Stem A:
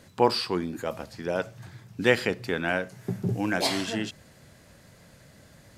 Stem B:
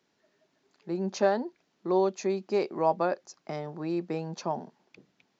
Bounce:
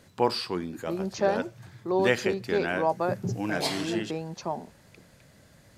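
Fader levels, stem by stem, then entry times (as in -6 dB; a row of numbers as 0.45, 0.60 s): -3.0, -0.5 dB; 0.00, 0.00 s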